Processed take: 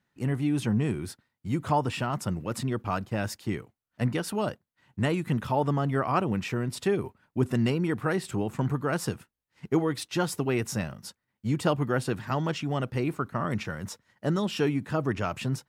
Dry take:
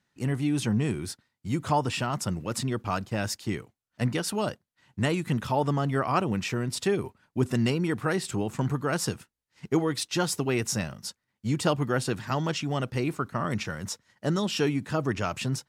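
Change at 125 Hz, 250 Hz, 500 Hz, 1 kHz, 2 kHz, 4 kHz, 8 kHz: 0.0 dB, 0.0 dB, 0.0 dB, -0.5 dB, -1.5 dB, -4.5 dB, -6.0 dB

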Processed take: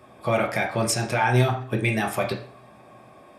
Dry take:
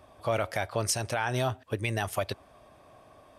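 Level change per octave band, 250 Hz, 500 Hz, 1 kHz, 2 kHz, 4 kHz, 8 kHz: +10.5 dB, +5.5 dB, +7.5 dB, +8.0 dB, +4.0 dB, +3.0 dB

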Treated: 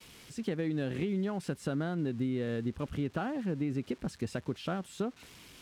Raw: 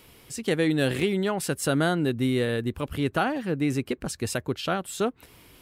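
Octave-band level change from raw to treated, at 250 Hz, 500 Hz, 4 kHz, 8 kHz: -6.5 dB, -9.5 dB, -14.0 dB, -16.5 dB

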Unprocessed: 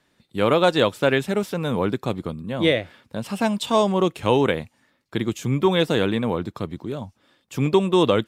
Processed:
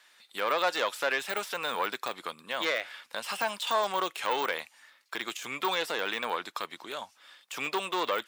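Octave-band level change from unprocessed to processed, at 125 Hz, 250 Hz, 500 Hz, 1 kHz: -31.0 dB, -21.0 dB, -13.0 dB, -4.5 dB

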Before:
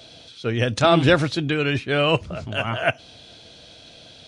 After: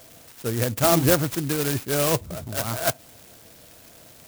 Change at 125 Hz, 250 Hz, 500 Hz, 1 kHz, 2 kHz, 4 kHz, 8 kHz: -2.5 dB, -2.5 dB, -3.0 dB, -4.0 dB, -7.5 dB, -5.5 dB, +13.5 dB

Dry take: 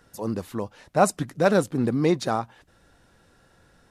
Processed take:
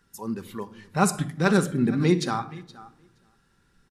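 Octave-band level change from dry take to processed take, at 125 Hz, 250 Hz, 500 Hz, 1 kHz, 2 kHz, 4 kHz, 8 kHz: +2.5 dB, +1.5 dB, -4.5 dB, -2.5 dB, +1.5 dB, +2.0 dB, +2.0 dB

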